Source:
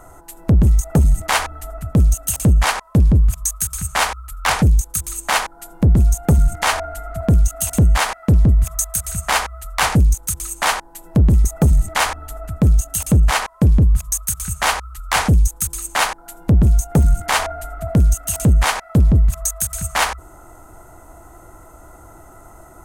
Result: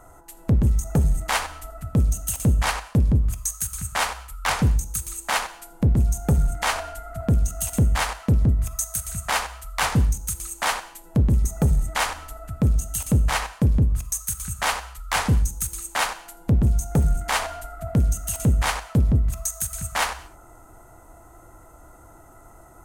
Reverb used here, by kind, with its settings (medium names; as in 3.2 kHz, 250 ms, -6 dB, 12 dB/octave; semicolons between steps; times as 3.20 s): gated-style reverb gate 250 ms falling, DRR 11.5 dB; trim -6 dB